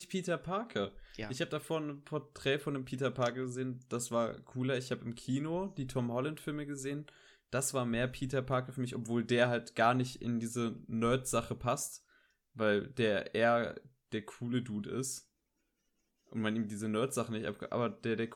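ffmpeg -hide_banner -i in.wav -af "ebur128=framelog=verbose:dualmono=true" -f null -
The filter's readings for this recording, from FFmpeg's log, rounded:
Integrated loudness:
  I:         -32.6 LUFS
  Threshold: -42.8 LUFS
Loudness range:
  LRA:         4.7 LU
  Threshold: -52.8 LUFS
  LRA low:   -35.2 LUFS
  LRA high:  -30.5 LUFS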